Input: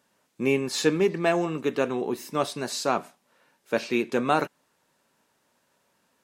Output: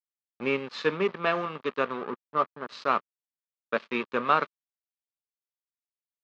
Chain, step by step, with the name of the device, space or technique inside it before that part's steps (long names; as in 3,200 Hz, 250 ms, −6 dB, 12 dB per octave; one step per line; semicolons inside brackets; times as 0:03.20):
0:02.02–0:02.69: Butterworth low-pass 1,500 Hz
blown loudspeaker (dead-zone distortion −33.5 dBFS; loudspeaker in its box 200–4,100 Hz, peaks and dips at 320 Hz −9 dB, 750 Hz −6 dB, 1,200 Hz +9 dB)